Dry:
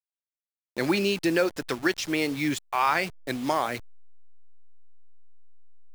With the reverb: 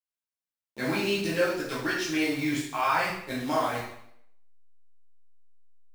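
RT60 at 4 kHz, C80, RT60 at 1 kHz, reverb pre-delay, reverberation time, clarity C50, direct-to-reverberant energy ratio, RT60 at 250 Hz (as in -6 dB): 0.65 s, 6.0 dB, 0.70 s, 5 ms, 0.70 s, 2.5 dB, -9.5 dB, 0.65 s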